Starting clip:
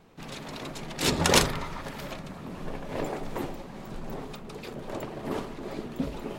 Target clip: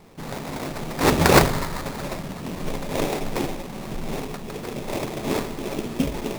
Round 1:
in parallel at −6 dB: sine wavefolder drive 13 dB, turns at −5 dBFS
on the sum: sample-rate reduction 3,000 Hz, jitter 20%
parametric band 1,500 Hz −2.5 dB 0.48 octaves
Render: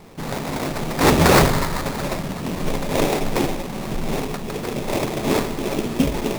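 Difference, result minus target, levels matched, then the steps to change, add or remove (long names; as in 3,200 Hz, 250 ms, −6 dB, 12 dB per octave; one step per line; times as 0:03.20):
sine wavefolder: distortion +11 dB
change: sine wavefolder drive 5 dB, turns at −5 dBFS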